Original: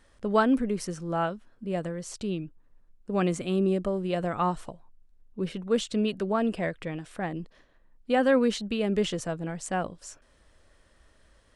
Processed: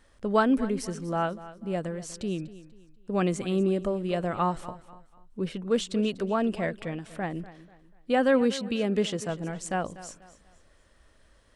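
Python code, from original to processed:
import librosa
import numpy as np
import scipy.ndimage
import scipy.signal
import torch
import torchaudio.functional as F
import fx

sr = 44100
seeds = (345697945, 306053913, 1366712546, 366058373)

y = fx.highpass(x, sr, hz=61.0, slope=12, at=(8.41, 9.3))
y = fx.echo_feedback(y, sr, ms=244, feedback_pct=35, wet_db=-16.5)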